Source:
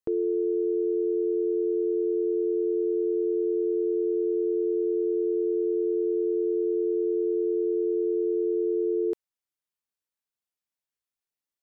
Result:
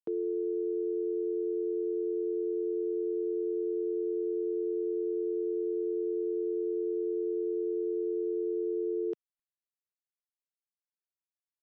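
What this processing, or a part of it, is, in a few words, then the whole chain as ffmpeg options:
Bluetooth headset: -af "highpass=frequency=160:width=0.5412,highpass=frequency=160:width=1.3066,aresample=16000,aresample=44100,volume=-6dB" -ar 32000 -c:a sbc -b:a 64k

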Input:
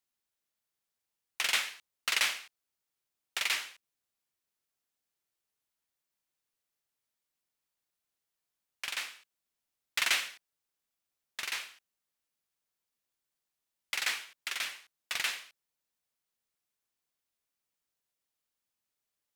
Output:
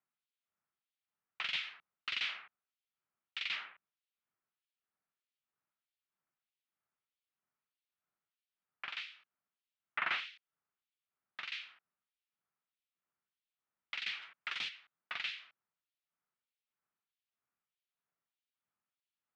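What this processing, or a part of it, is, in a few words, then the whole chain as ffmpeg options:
guitar amplifier with harmonic tremolo: -filter_complex "[0:a]asplit=3[link_01][link_02][link_03];[link_01]afade=type=out:start_time=14.21:duration=0.02[link_04];[link_02]aemphasis=mode=production:type=75kf,afade=type=in:start_time=14.21:duration=0.02,afade=type=out:start_time=14.68:duration=0.02[link_05];[link_03]afade=type=in:start_time=14.68:duration=0.02[link_06];[link_04][link_05][link_06]amix=inputs=3:normalize=0,acrossover=split=2300[link_07][link_08];[link_07]aeval=exprs='val(0)*(1-1/2+1/2*cos(2*PI*1.6*n/s))':channel_layout=same[link_09];[link_08]aeval=exprs='val(0)*(1-1/2-1/2*cos(2*PI*1.6*n/s))':channel_layout=same[link_10];[link_09][link_10]amix=inputs=2:normalize=0,asoftclip=type=tanh:threshold=-26dB,highpass=97,equalizer=frequency=170:width_type=q:width=4:gain=3,equalizer=frequency=310:width_type=q:width=4:gain=-4,equalizer=frequency=500:width_type=q:width=4:gain=-6,equalizer=frequency=1300:width_type=q:width=4:gain=6,lowpass=frequency=3500:width=0.5412,lowpass=frequency=3500:width=1.3066,volume=1dB"

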